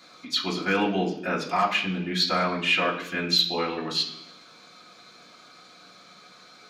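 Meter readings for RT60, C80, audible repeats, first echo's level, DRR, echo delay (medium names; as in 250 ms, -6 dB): 0.70 s, 11.5 dB, no echo, no echo, -5.5 dB, no echo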